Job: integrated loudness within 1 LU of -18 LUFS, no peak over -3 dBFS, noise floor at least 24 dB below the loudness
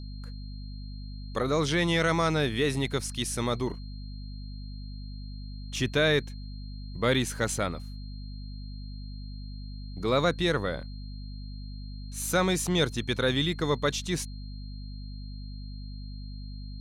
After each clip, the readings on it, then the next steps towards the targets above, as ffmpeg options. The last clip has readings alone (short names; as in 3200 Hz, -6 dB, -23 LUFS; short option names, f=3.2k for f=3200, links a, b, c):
hum 50 Hz; harmonics up to 250 Hz; hum level -37 dBFS; steady tone 4200 Hz; tone level -52 dBFS; loudness -28.0 LUFS; peak -12.5 dBFS; loudness target -18.0 LUFS
-> -af "bandreject=f=50:t=h:w=6,bandreject=f=100:t=h:w=6,bandreject=f=150:t=h:w=6,bandreject=f=200:t=h:w=6,bandreject=f=250:t=h:w=6"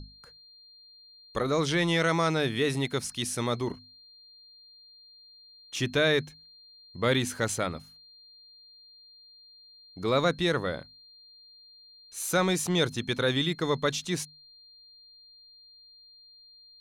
hum none; steady tone 4200 Hz; tone level -52 dBFS
-> -af "bandreject=f=4.2k:w=30"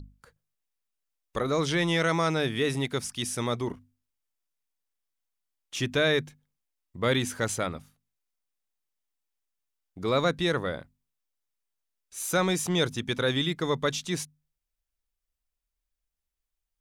steady tone none; loudness -28.0 LUFS; peak -13.5 dBFS; loudness target -18.0 LUFS
-> -af "volume=10dB"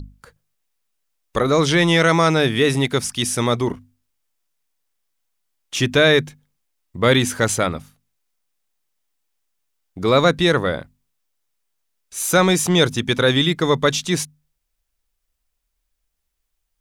loudness -18.0 LUFS; peak -3.5 dBFS; noise floor -75 dBFS